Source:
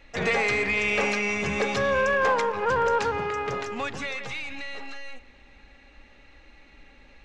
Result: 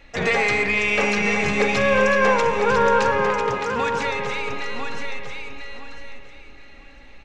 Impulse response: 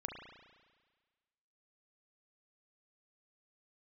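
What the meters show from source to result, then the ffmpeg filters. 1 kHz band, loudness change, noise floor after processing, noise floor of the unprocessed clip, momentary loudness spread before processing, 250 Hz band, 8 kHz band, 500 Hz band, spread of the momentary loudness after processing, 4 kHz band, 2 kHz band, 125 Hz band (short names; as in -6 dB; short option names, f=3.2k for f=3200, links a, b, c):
+5.5 dB, +5.0 dB, -44 dBFS, -54 dBFS, 14 LU, +7.0 dB, +5.0 dB, +6.0 dB, 16 LU, +5.0 dB, +5.0 dB, +5.5 dB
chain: -filter_complex "[0:a]aecho=1:1:998|1996|2994:0.501|0.105|0.0221,asplit=2[a][b];[1:a]atrim=start_sample=2205[c];[b][c]afir=irnorm=-1:irlink=0,volume=-2dB[d];[a][d]amix=inputs=2:normalize=0"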